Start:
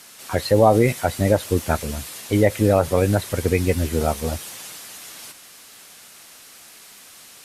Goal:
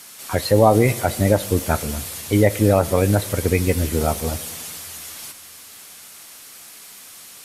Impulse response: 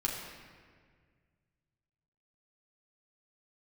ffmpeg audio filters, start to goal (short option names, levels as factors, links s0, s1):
-filter_complex "[0:a]highshelf=f=8800:g=6.5,asplit=2[s0][s1];[1:a]atrim=start_sample=2205[s2];[s1][s2]afir=irnorm=-1:irlink=0,volume=0.133[s3];[s0][s3]amix=inputs=2:normalize=0"